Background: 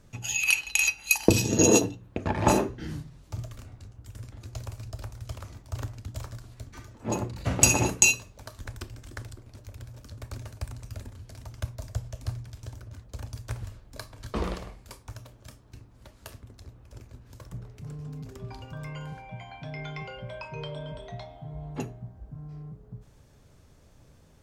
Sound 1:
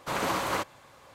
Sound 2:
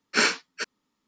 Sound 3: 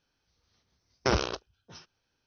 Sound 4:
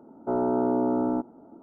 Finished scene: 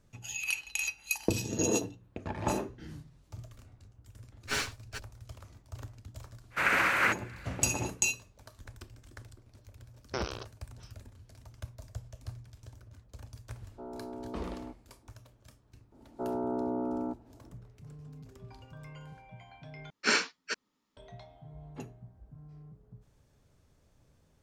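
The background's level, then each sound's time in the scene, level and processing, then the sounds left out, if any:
background -9.5 dB
4.34 s: add 2 -9 dB + comb filter that takes the minimum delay 7.3 ms
6.50 s: add 1 -4.5 dB, fades 0.05 s + high-order bell 1.9 kHz +14.5 dB 1.2 oct
9.08 s: add 3 -9 dB
13.51 s: add 4 -18 dB
15.92 s: add 4 -8.5 dB
19.90 s: replace with 2 -4.5 dB + gain riding within 5 dB 2 s

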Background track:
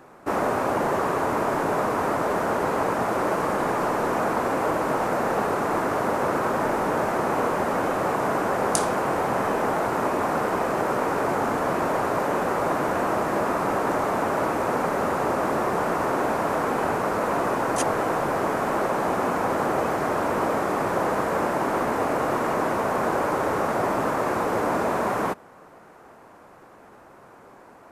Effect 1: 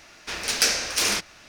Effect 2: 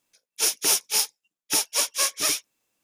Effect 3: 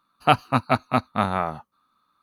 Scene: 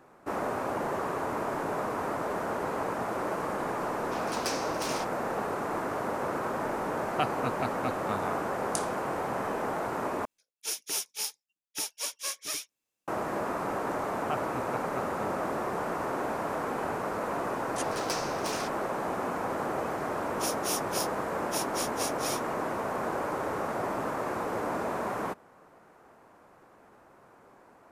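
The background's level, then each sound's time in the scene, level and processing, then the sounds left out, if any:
background track -8 dB
3.84 s: add 1 -15 dB
6.91 s: add 3 -12.5 dB
10.25 s: replace with 2 -11 dB
14.02 s: add 3 -17 dB + low-pass 2.3 kHz
17.48 s: add 1 -15.5 dB
20.01 s: add 2 -12 dB

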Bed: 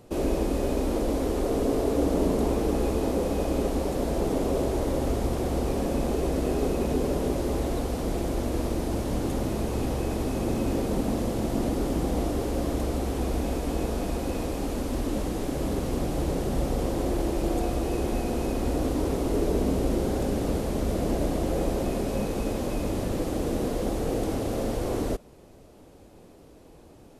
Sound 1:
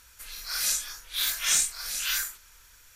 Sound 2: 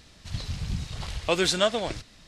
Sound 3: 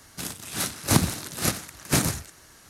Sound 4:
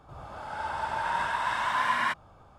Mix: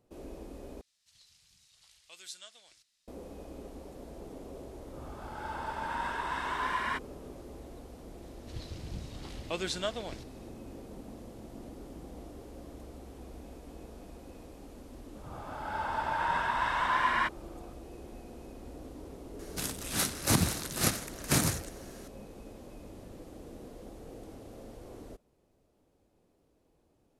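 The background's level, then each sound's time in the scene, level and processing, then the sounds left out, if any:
bed -19.5 dB
0.81 s: replace with 2 -15.5 dB + pre-emphasis filter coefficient 0.97
4.85 s: add 4 -6 dB
8.22 s: add 2 -11 dB
15.15 s: add 4 -1 dB + treble shelf 7.9 kHz -10.5 dB
19.39 s: add 3 -12 dB + loudness maximiser +10 dB
not used: 1

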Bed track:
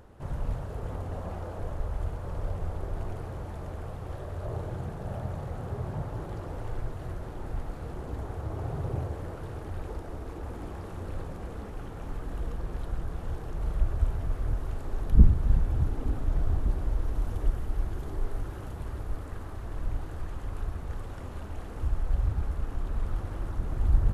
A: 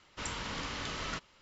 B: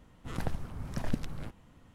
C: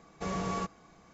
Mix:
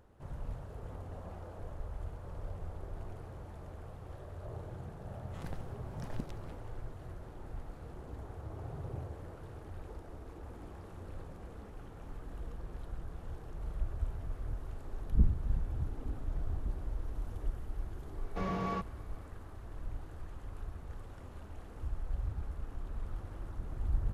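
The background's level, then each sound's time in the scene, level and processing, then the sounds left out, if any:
bed track -9.5 dB
5.06 s: add B -9.5 dB
18.15 s: add C -1.5 dB + Gaussian low-pass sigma 2 samples
not used: A

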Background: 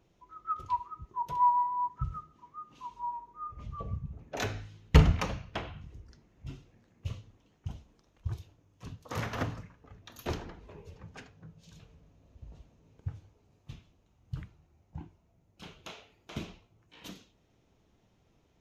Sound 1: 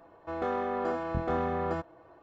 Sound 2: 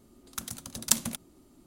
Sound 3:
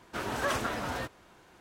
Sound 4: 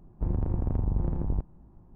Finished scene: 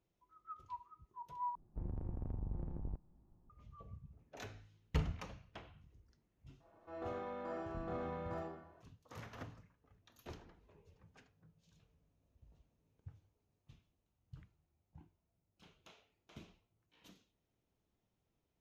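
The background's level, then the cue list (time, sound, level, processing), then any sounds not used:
background -16 dB
1.55 s: replace with 4 -14.5 dB + band-stop 1 kHz, Q 22
6.60 s: add 1 -16.5 dB + algorithmic reverb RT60 0.86 s, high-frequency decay 0.8×, DRR -5 dB
not used: 2, 3

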